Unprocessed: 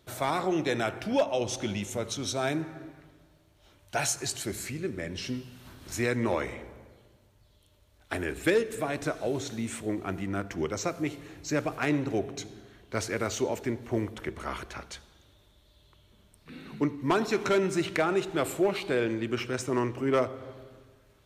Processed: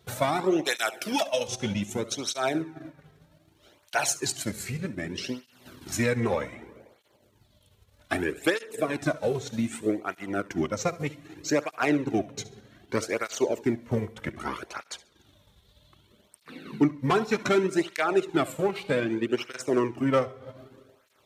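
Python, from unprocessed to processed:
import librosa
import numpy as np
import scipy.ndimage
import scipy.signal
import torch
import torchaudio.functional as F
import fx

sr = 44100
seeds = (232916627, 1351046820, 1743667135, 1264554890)

p1 = fx.transient(x, sr, attack_db=4, sustain_db=-8)
p2 = fx.riaa(p1, sr, side='recording', at=(0.65, 1.48))
p3 = 10.0 ** (-22.0 / 20.0) * np.tanh(p2 / 10.0 ** (-22.0 / 20.0))
p4 = p2 + (p3 * librosa.db_to_amplitude(-5.5))
p5 = fx.echo_feedback(p4, sr, ms=68, feedback_pct=27, wet_db=-18.5)
p6 = fx.flanger_cancel(p5, sr, hz=0.64, depth_ms=3.5)
y = p6 * librosa.db_to_amplitude(1.5)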